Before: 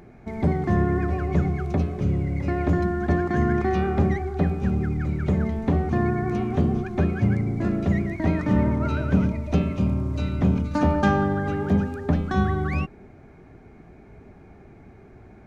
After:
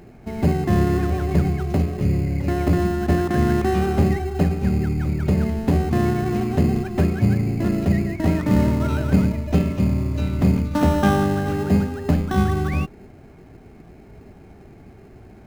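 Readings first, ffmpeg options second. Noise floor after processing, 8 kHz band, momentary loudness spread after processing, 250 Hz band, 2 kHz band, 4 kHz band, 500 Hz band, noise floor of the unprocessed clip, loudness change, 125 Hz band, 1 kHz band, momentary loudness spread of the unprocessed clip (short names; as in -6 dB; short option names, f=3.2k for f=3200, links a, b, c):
-45 dBFS, n/a, 4 LU, +3.0 dB, +1.0 dB, +7.0 dB, +3.0 dB, -48 dBFS, +3.0 dB, +3.0 dB, +1.5 dB, 4 LU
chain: -filter_complex "[0:a]asplit=2[a][b];[b]acrusher=samples=19:mix=1:aa=0.000001,volume=-7dB[c];[a][c]amix=inputs=2:normalize=0"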